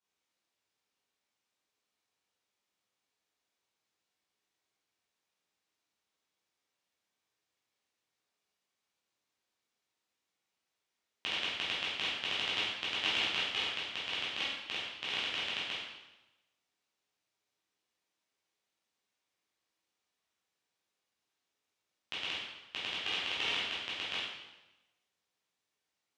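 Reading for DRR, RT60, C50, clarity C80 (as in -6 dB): -9.0 dB, 1.0 s, -0.5 dB, 3.0 dB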